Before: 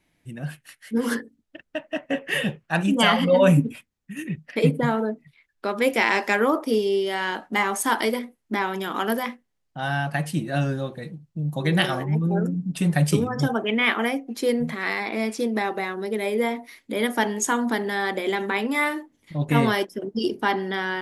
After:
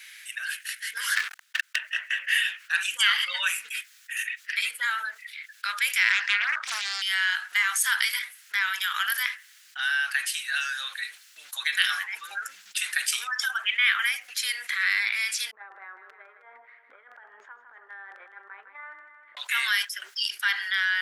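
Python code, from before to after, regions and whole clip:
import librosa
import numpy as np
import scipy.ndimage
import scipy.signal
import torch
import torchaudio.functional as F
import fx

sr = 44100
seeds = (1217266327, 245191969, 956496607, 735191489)

y = fx.chain(x, sr, fx.tilt_shelf(db=4.5, hz=1300.0),
    fx.leveller(passes=5), at=(1.16, 1.76))
y = fx.chain(y, sr, fx.air_absorb(metres=130.0),
    fx.doppler_dist(depth_ms=0.92), at=(6.12, 7.02))
y = fx.chain(y, sr, fx.ladder_lowpass(hz=620.0, resonance_pct=25),
    fx.over_compress(threshold_db=-36.0, ratio=-0.5),
    fx.echo_feedback(ms=157, feedback_pct=47, wet_db=-15.5), at=(15.51, 19.37))
y = scipy.signal.sosfilt(scipy.signal.cheby1(4, 1.0, 1500.0, 'highpass', fs=sr, output='sos'), y)
y = fx.env_flatten(y, sr, amount_pct=50)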